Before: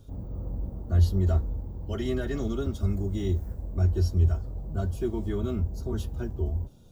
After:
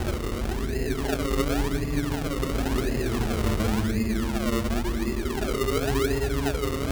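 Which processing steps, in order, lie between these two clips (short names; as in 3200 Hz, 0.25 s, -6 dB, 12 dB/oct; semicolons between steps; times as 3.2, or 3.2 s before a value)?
Paulstretch 17×, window 0.10 s, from 2.25; decimation with a swept rate 37×, swing 100% 0.93 Hz; gain +3 dB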